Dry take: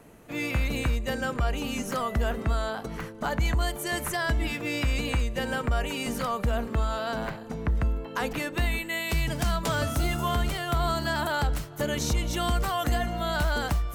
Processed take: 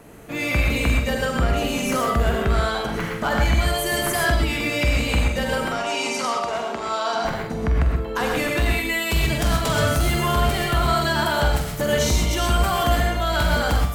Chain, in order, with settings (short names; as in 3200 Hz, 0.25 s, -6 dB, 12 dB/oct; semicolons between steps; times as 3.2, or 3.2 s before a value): 2.31–3.44 bell 2300 Hz +3.5 dB 2 oct; soft clip -21 dBFS, distortion -18 dB; 5.65–7.25 speaker cabinet 370–9500 Hz, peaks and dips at 510 Hz -6 dB, 870 Hz +5 dB, 1700 Hz -5 dB, 5600 Hz +9 dB, 8800 Hz -3 dB; flutter echo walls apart 7.9 m, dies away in 0.33 s; non-linear reverb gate 0.15 s rising, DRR 1 dB; gain +6 dB